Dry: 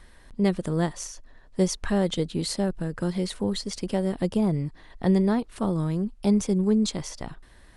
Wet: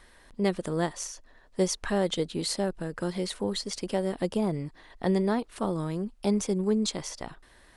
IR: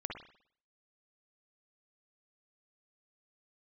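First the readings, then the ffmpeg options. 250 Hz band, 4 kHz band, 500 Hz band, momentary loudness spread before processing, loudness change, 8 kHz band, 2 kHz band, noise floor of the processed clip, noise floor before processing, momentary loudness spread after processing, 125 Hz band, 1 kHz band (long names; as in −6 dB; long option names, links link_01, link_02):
−5.0 dB, 0.0 dB, −1.0 dB, 13 LU, −3.5 dB, 0.0 dB, 0.0 dB, −57 dBFS, −52 dBFS, 11 LU, −6.0 dB, 0.0 dB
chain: -af "bass=frequency=250:gain=-8,treble=frequency=4000:gain=0"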